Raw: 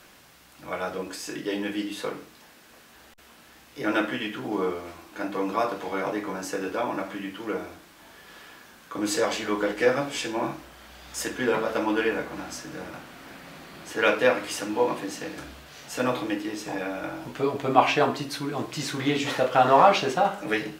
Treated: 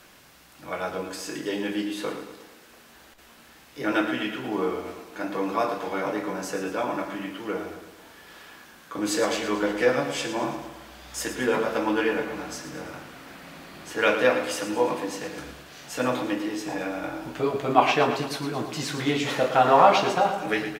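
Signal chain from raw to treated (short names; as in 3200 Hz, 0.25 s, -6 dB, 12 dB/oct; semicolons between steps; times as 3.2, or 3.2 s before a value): feedback echo 0.112 s, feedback 54%, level -10 dB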